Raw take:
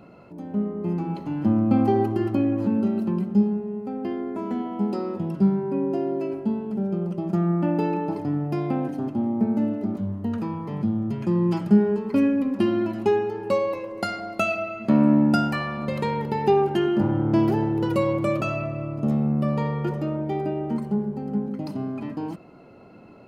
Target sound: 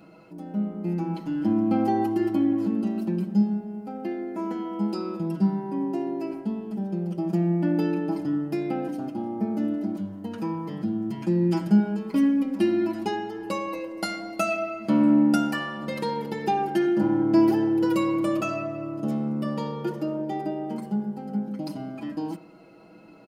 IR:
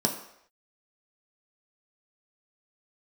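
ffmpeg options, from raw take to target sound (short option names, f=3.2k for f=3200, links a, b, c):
-filter_complex "[0:a]highshelf=f=2.3k:g=10.5,aecho=1:1:6.2:0.86,asplit=2[a][b];[1:a]atrim=start_sample=2205,lowpass=4.4k[c];[b][c]afir=irnorm=-1:irlink=0,volume=-20.5dB[d];[a][d]amix=inputs=2:normalize=0,volume=-7.5dB"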